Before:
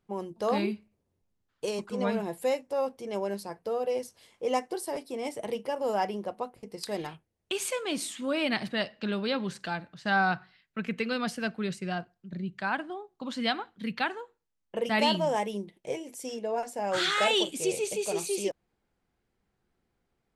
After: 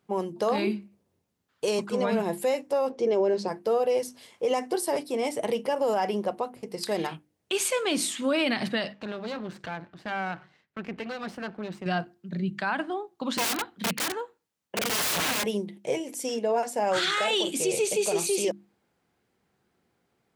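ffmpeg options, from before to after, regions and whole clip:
ffmpeg -i in.wav -filter_complex "[0:a]asettb=1/sr,asplit=3[link_01][link_02][link_03];[link_01]atrim=end=2.904[link_04];[link_02]atrim=start=2.9:end=3.48,asetpts=PTS-STARTPTS,afade=type=in:duration=0.004:curve=qsin,afade=type=out:start_time=0.576:duration=0.004:curve=qsin,lowpass=frequency=6700:width=0.5412,lowpass=frequency=6700:width=1.3066,equalizer=frequency=410:width=1.2:gain=10[link_05];[link_03]atrim=start=3.476[link_06];[link_04][link_05]acrossfade=duration=0.004:curve1=hsin:curve2=qsin[link_07];[link_07][link_06]acrossfade=duration=0.004:curve1=qsin:curve2=hsin,asettb=1/sr,asplit=3[link_08][link_09][link_10];[link_08]atrim=end=8.934[link_11];[link_09]atrim=start=8.93:end=11.86,asetpts=PTS-STARTPTS,afade=type=in:duration=0.004:curve=qsin,afade=type=out:start_time=2.926:duration=0.004:curve=qsin,aeval=exprs='max(val(0),0)':channel_layout=same,lowpass=frequency=1800:poles=1,acompressor=threshold=-37dB:ratio=2:attack=3.2:release=140:knee=1:detection=peak[link_12];[link_10]atrim=start=11.856[link_13];[link_11][link_12]acrossfade=duration=0.004:curve1=hsin:curve2=qsin[link_14];[link_14][link_13]acrossfade=duration=0.004:curve1=qsin:curve2=hsin,asettb=1/sr,asplit=3[link_15][link_16][link_17];[link_15]atrim=end=13.374[link_18];[link_16]atrim=start=13.37:end=15.44,asetpts=PTS-STARTPTS,afade=type=in:duration=0.004:curve=qsin,afade=type=out:start_time=2.066:duration=0.004:curve=qsin,acrossover=split=380|3000[link_19][link_20][link_21];[link_20]acompressor=threshold=-29dB:ratio=2:attack=3.2:release=140:knee=2.83:detection=peak[link_22];[link_19][link_22][link_21]amix=inputs=3:normalize=0,aeval=exprs='(mod(28.2*val(0)+1,2)-1)/28.2':channel_layout=same[link_23];[link_17]atrim=start=15.436[link_24];[link_18][link_23]acrossfade=duration=0.004:curve1=hsin:curve2=qsin[link_25];[link_25][link_24]acrossfade=duration=0.004:curve1=qsin:curve2=hsin,highpass=110,bandreject=frequency=50:width_type=h:width=6,bandreject=frequency=100:width_type=h:width=6,bandreject=frequency=150:width_type=h:width=6,bandreject=frequency=200:width_type=h:width=6,bandreject=frequency=250:width_type=h:width=6,bandreject=frequency=300:width_type=h:width=6,bandreject=frequency=350:width_type=h:width=6,alimiter=limit=-24dB:level=0:latency=1:release=52,volume=7dB" out.wav

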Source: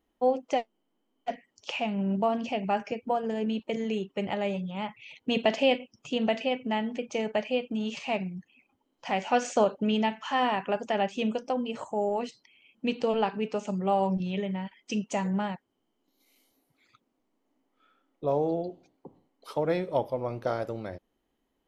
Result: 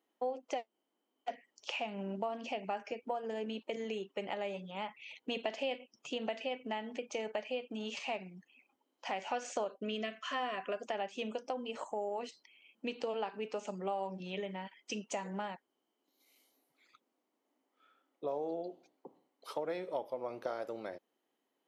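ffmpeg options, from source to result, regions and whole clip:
ffmpeg -i in.wav -filter_complex "[0:a]asettb=1/sr,asplit=3[link_01][link_02][link_03];[link_01]atrim=end=9.684[link_04];[link_02]atrim=start=9.68:end=10.88,asetpts=PTS-STARTPTS,afade=type=in:duration=0.004:curve=qsin,afade=type=out:start_time=1.196:duration=0.004:curve=qsin,agate=range=-33dB:threshold=-47dB:ratio=3:release=100:detection=peak,asuperstop=centerf=880:order=20:qfactor=4.2[link_05];[link_03]atrim=start=10.876[link_06];[link_04][link_05]acrossfade=duration=0.004:curve1=hsin:curve2=qsin[link_07];[link_07][link_06]acrossfade=duration=0.004:curve1=qsin:curve2=hsin,highpass=330,acompressor=threshold=-33dB:ratio=3,volume=-2.5dB" out.wav

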